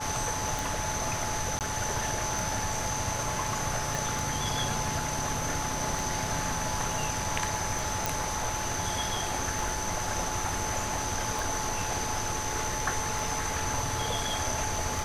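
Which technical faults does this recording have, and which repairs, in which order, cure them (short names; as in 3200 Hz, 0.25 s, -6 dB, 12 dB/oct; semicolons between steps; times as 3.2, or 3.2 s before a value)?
tick 33 1/3 rpm
tone 860 Hz -36 dBFS
1.59–1.61 gap 18 ms
3.95 pop
8.06 pop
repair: de-click; notch 860 Hz, Q 30; interpolate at 1.59, 18 ms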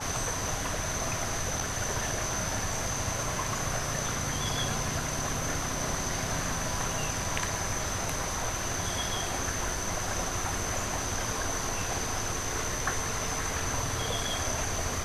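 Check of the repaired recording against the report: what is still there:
3.95 pop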